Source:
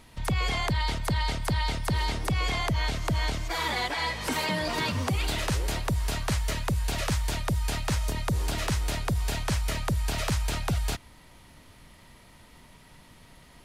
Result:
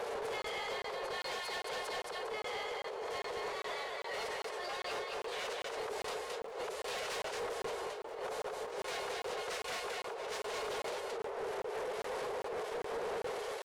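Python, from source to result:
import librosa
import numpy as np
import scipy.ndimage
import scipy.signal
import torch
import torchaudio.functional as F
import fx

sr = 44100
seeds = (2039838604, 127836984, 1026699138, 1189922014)

p1 = fx.delta_mod(x, sr, bps=64000, step_db=-37.0)
p2 = fx.dmg_wind(p1, sr, seeds[0], corner_hz=490.0, level_db=-23.0)
p3 = scipy.signal.sosfilt(scipy.signal.ellip(4, 1.0, 40, 360.0, 'highpass', fs=sr, output='sos'), p2)
p4 = (np.mod(10.0 ** (15.0 / 20.0) * p3 + 1.0, 2.0) - 1.0) / 10.0 ** (15.0 / 20.0)
p5 = p3 + F.gain(torch.from_numpy(p4), -7.5).numpy()
p6 = fx.pitch_keep_formants(p5, sr, semitones=2.5)
p7 = fx.over_compress(p6, sr, threshold_db=-32.0, ratio=-1.0)
p8 = p7 + 10.0 ** (-3.0 / 20.0) * np.pad(p7, (int(219 * sr / 1000.0), 0))[:len(p7)]
p9 = np.clip(p8, -10.0 ** (-26.5 / 20.0), 10.0 ** (-26.5 / 20.0))
p10 = fx.high_shelf(p9, sr, hz=7700.0, db=-11.0)
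p11 = fx.buffer_crackle(p10, sr, first_s=0.42, period_s=0.4, block=1024, kind='zero')
y = F.gain(torch.from_numpy(p11), -8.5).numpy()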